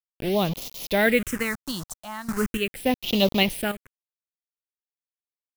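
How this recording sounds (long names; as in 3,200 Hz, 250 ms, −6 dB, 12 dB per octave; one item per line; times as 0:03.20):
a quantiser's noise floor 6 bits, dither none
sample-and-hold tremolo 3.5 Hz, depth 85%
phaser sweep stages 4, 0.39 Hz, lowest notch 380–1,600 Hz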